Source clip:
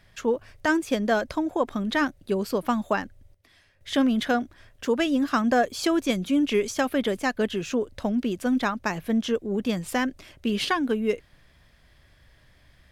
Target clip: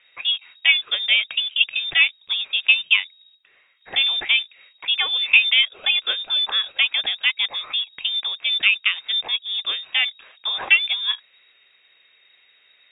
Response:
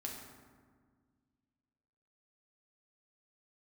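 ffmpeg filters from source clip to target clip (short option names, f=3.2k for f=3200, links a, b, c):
-filter_complex "[0:a]equalizer=f=1.2k:t=o:w=0.86:g=15,asplit=2[a][b];[b]aeval=exprs='val(0)*gte(abs(val(0)),0.0473)':c=same,volume=-11dB[c];[a][c]amix=inputs=2:normalize=0,lowpass=f=3.2k:t=q:w=0.5098,lowpass=f=3.2k:t=q:w=0.6013,lowpass=f=3.2k:t=q:w=0.9,lowpass=f=3.2k:t=q:w=2.563,afreqshift=-3800,volume=-2.5dB"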